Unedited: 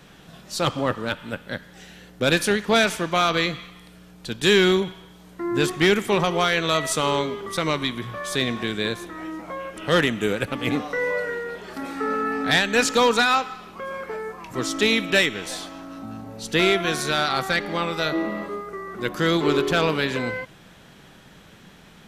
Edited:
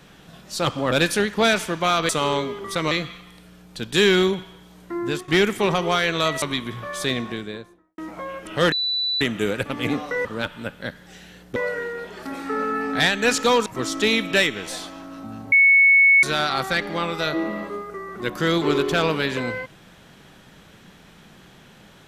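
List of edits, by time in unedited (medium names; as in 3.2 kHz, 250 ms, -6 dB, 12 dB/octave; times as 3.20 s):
0.92–2.23 s: move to 11.07 s
5.44–5.77 s: fade out, to -13 dB
6.91–7.73 s: move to 3.40 s
8.34–9.29 s: studio fade out
10.03 s: add tone 3.97 kHz -20.5 dBFS 0.49 s
13.17–14.45 s: delete
16.31–17.02 s: bleep 2.21 kHz -10.5 dBFS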